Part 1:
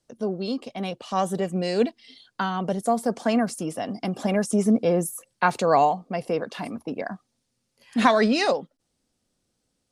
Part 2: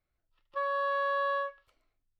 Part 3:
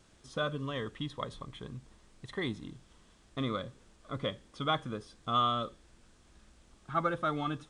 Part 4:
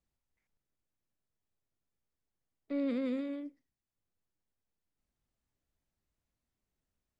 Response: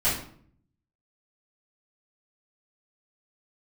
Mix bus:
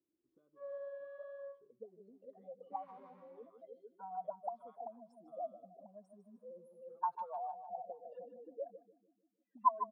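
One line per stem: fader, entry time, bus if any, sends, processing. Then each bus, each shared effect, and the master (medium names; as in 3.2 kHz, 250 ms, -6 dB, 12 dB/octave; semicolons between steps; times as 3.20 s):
-5.5 dB, 1.60 s, no send, echo send -10 dB, spectral contrast enhancement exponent 3.8; band-stop 380 Hz, Q 12
-5.5 dB, 0.00 s, send -8 dB, no echo send, flange 1.5 Hz, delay 9.9 ms, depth 3.1 ms, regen -76%
-10.0 dB, 0.00 s, no send, no echo send, compression 3:1, threshold -45 dBFS, peak gain reduction 15.5 dB
-3.0 dB, 0.00 s, send -15.5 dB, no echo send, delay time shaken by noise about 1.8 kHz, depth 0.034 ms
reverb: on, RT60 0.55 s, pre-delay 3 ms
echo: feedback delay 152 ms, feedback 47%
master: auto-wah 320–1000 Hz, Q 11, up, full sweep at -27 dBFS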